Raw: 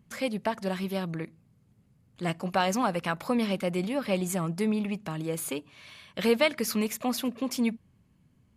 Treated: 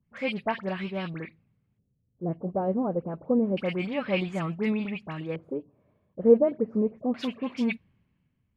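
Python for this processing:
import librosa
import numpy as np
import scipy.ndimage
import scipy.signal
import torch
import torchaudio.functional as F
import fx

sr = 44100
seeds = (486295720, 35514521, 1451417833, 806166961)

y = fx.dispersion(x, sr, late='highs', ms=63.0, hz=2100.0)
y = fx.filter_lfo_lowpass(y, sr, shape='square', hz=0.28, low_hz=480.0, high_hz=2500.0, q=1.6)
y = fx.band_widen(y, sr, depth_pct=40)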